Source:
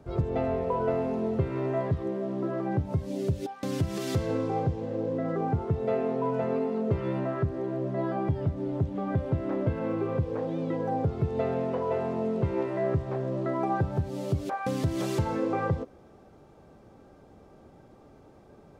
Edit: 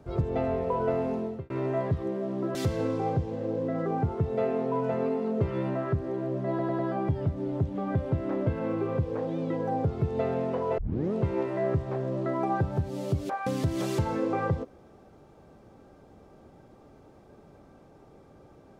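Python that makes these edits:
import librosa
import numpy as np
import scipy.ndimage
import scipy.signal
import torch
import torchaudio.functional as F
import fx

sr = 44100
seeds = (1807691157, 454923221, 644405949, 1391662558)

y = fx.edit(x, sr, fx.fade_out_span(start_s=1.13, length_s=0.37),
    fx.cut(start_s=2.55, length_s=1.5),
    fx.stutter(start_s=7.99, slice_s=0.1, count=4),
    fx.tape_start(start_s=11.98, length_s=0.35), tone=tone)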